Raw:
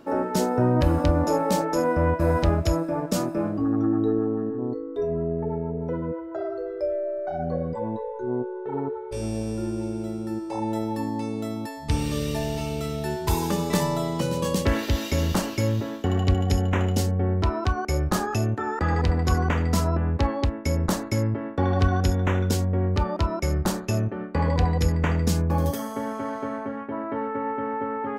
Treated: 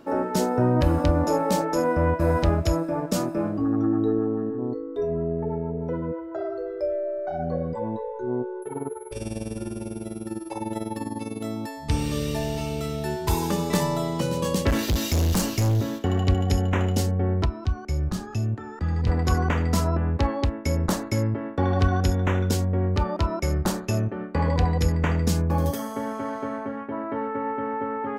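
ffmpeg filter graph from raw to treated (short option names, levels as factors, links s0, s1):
-filter_complex "[0:a]asettb=1/sr,asplit=3[s0][s1][s2];[s0]atrim=end=8.624[s3];[s1]atrim=start=8.62:end=11.44,asetpts=PTS-STARTPTS,afade=t=in:d=0.004:c=qsin,afade=t=out:st=2.816:d=0.004:c=qsin,equalizer=f=2700:w=1.4:g=4.5,aeval=exprs='val(0)+0.00501*sin(2*PI*11000*n/s)':c=same,tremolo=f=20:d=0.75[s4];[s2]atrim=start=11.436[s5];[s3][s4]acrossfade=d=0.004:c1=hsin:c2=qsin[s6];[s6][s5]acrossfade=d=0.004:c1=qsin:c2=hsin,asettb=1/sr,asplit=3[s7][s8][s9];[s7]atrim=end=14.704[s10];[s8]atrim=start=14.7:end=15.99,asetpts=PTS-STARTPTS,afade=t=in:d=0.004:c=qsin,afade=t=out:st=1.286:d=0.004:c=qsin,bass=f=250:g=8,treble=f=4000:g=9,asoftclip=type=hard:threshold=0.112[s11];[s9]atrim=start=15.986[s12];[s10][s11]acrossfade=d=0.004:c1=hsin:c2=qsin[s13];[s13][s12]acrossfade=d=0.004:c1=qsin:c2=hsin,asettb=1/sr,asplit=3[s14][s15][s16];[s14]atrim=end=17.454[s17];[s15]atrim=start=17.45:end=19.07,asetpts=PTS-STARTPTS,afade=t=in:d=0.004:c=qsin,afade=t=out:st=1.616:d=0.004:c=qsin,lowpass=f=2900:p=1,acrossover=split=240|3000[s18][s19][s20];[s19]acompressor=threshold=0.0112:ratio=6:attack=3.2:release=140:knee=2.83:detection=peak[s21];[s18][s21][s20]amix=inputs=3:normalize=0[s22];[s16]atrim=start=19.066[s23];[s17][s22]acrossfade=d=0.004:c1=hsin:c2=qsin[s24];[s24][s23]acrossfade=d=0.004:c1=qsin:c2=hsin"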